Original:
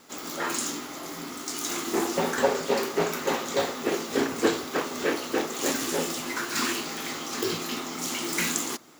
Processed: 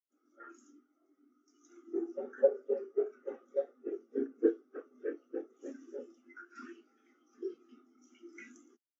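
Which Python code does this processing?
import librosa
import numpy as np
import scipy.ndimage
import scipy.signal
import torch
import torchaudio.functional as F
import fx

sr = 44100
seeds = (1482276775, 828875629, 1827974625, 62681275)

y = fx.cabinet(x, sr, low_hz=170.0, low_slope=24, high_hz=6700.0, hz=(170.0, 970.0, 1400.0, 4200.0, 5900.0), db=(-9, -8, 4, -7, 4))
y = fx.spectral_expand(y, sr, expansion=2.5)
y = y * librosa.db_to_amplitude(-4.0)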